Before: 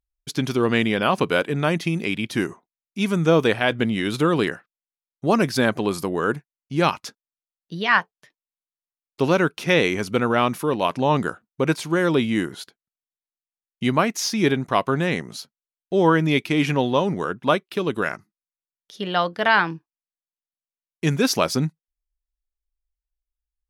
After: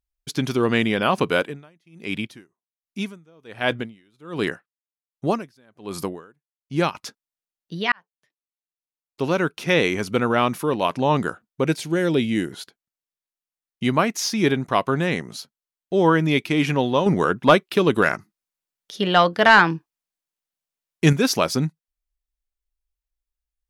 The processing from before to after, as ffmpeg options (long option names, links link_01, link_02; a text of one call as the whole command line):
ffmpeg -i in.wav -filter_complex "[0:a]asettb=1/sr,asplit=3[link_01][link_02][link_03];[link_01]atrim=end=1.404[link_04];[link_02]atrim=start=1.4:end=6.95,asetpts=PTS-STARTPTS,afade=type=in:duration=0.004:curve=qsin,afade=type=out:start_time=5.546:duration=0.004:curve=qsin,aeval=exprs='val(0)*pow(10,-37*(0.5-0.5*cos(2*PI*1.3*n/s))/20)':channel_layout=same[link_05];[link_03]atrim=start=6.946[link_06];[link_04][link_05]acrossfade=duration=0.004:curve1=hsin:curve2=qsin[link_07];[link_07][link_06]acrossfade=duration=0.004:curve1=qsin:curve2=hsin,asettb=1/sr,asplit=3[link_08][link_09][link_10];[link_08]atrim=end=11.664[link_11];[link_09]atrim=start=11.66:end=12.52,asetpts=PTS-STARTPTS,afade=type=in:duration=0.004:curve=qsin,afade=type=out:start_time=0.856:duration=0.004:curve=qsin,equalizer=frequency=1100:width_type=o:width=0.7:gain=-11.5[link_12];[link_10]atrim=start=12.516[link_13];[link_11][link_12]acrossfade=duration=0.004:curve1=hsin:curve2=qsin[link_14];[link_14][link_13]acrossfade=duration=0.004:curve1=qsin:curve2=hsin,asettb=1/sr,asplit=3[link_15][link_16][link_17];[link_15]atrim=end=17.064[link_18];[link_16]atrim=start=17.06:end=21.13,asetpts=PTS-STARTPTS,afade=type=in:duration=0.004:curve=qsin,afade=type=out:start_time=4.066:duration=0.004:curve=qsin,acontrast=55[link_19];[link_17]atrim=start=21.126[link_20];[link_18][link_19]acrossfade=duration=0.004:curve1=hsin:curve2=qsin[link_21];[link_21][link_20]acrossfade=duration=0.004:curve1=qsin:curve2=hsin,asplit=2[link_22][link_23];[link_22]atrim=end=7.92,asetpts=PTS-STARTPTS,afade=type=out:start_time=7.916:duration=0.004:curve=hsin[link_24];[link_23]atrim=start=7.92,asetpts=PTS-STARTPTS,afade=type=in:duration=1.97[link_25];[link_24][link_25]concat=n=2:v=0:a=1" out.wav